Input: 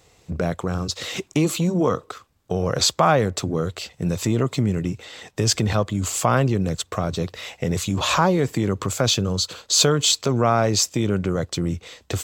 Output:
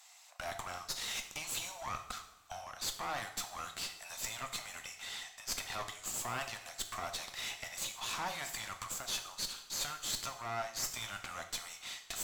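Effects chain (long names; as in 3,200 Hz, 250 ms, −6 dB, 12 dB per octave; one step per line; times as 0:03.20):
Butterworth high-pass 670 Hz 72 dB per octave
high-shelf EQ 4,200 Hz +8 dB
reversed playback
downward compressor 6 to 1, threshold −29 dBFS, peak gain reduction 18.5 dB
reversed playback
asymmetric clip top −40 dBFS
coupled-rooms reverb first 0.66 s, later 2.7 s, from −18 dB, DRR 5.5 dB
level −5 dB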